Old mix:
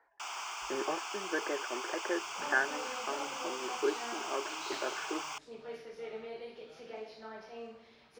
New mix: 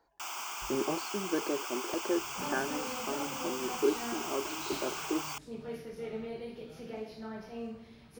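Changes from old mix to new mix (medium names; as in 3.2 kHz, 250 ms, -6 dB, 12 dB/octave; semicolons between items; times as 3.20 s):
speech: remove resonant low-pass 1.9 kHz, resonance Q 3.6; master: remove three-band isolator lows -16 dB, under 380 Hz, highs -18 dB, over 7.5 kHz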